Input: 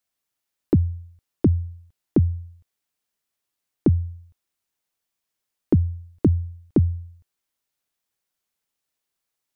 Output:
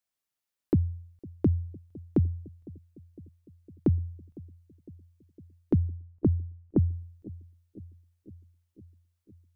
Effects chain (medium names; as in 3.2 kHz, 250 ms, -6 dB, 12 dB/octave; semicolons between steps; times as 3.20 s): 5.88–6.91 s: low-pass 1.3 kHz 12 dB/octave; bucket-brigade echo 506 ms, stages 2048, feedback 67%, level -21 dB; trim -6 dB